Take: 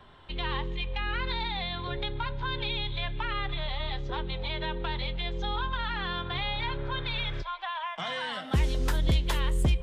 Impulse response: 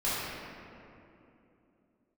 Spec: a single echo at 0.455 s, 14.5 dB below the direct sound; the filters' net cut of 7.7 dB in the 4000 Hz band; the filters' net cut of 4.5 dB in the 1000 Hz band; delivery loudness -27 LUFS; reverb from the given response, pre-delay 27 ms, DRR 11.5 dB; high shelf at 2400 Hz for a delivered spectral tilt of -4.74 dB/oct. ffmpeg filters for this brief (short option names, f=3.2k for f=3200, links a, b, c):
-filter_complex "[0:a]equalizer=f=1k:t=o:g=-4,highshelf=f=2.4k:g=-6.5,equalizer=f=4k:t=o:g=-4,aecho=1:1:455:0.188,asplit=2[a][b];[1:a]atrim=start_sample=2205,adelay=27[c];[b][c]afir=irnorm=-1:irlink=0,volume=-22dB[d];[a][d]amix=inputs=2:normalize=0,volume=6dB"